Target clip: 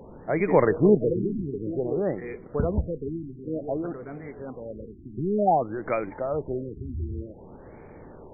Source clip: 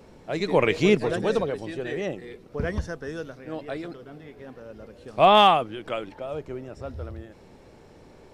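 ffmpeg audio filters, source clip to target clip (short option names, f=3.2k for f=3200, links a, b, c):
-filter_complex "[0:a]asplit=2[a][b];[b]acompressor=threshold=-28dB:ratio=6,volume=-2dB[c];[a][c]amix=inputs=2:normalize=0,afftfilt=real='re*lt(b*sr/1024,380*pow(2500/380,0.5+0.5*sin(2*PI*0.54*pts/sr)))':imag='im*lt(b*sr/1024,380*pow(2500/380,0.5+0.5*sin(2*PI*0.54*pts/sr)))':win_size=1024:overlap=0.75"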